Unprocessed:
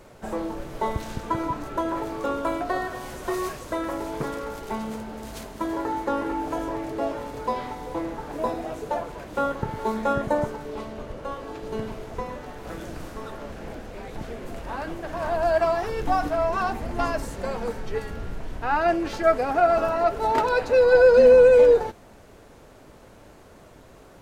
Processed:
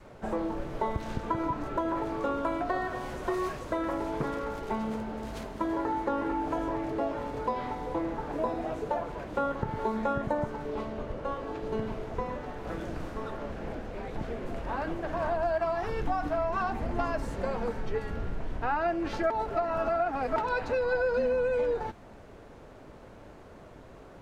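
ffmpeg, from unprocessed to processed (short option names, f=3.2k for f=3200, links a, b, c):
-filter_complex "[0:a]asplit=3[a][b][c];[a]atrim=end=19.302[d];[b]atrim=start=19.298:end=20.362,asetpts=PTS-STARTPTS,areverse[e];[c]atrim=start=20.358[f];[d][e]acrossfade=d=0.004:c1=hsin:c2=hsin[g];[g][f]acrossfade=d=0.004:c1=hsin:c2=hsin,lowpass=f=2.5k:p=1,adynamicequalizer=threshold=0.02:dfrequency=470:dqfactor=1.7:tfrequency=470:tqfactor=1.7:attack=5:release=100:ratio=0.375:range=3.5:mode=cutabove:tftype=bell,acompressor=threshold=-26dB:ratio=4"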